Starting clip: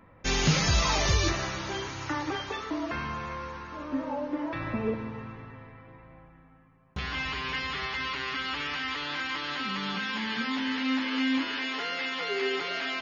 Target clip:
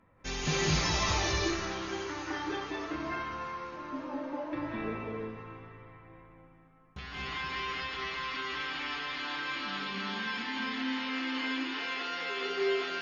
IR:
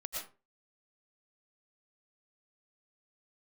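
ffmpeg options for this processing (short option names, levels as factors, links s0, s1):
-filter_complex "[1:a]atrim=start_sample=2205,asetrate=24696,aresample=44100[s0];[0:a][s0]afir=irnorm=-1:irlink=0,volume=0.398"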